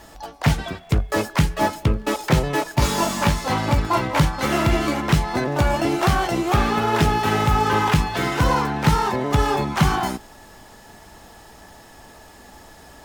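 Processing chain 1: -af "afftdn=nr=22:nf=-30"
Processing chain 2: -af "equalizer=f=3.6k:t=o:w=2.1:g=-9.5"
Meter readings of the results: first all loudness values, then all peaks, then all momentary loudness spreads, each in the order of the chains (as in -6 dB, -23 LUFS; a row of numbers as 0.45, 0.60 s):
-21.0, -22.0 LUFS; -5.0, -5.0 dBFS; 4, 4 LU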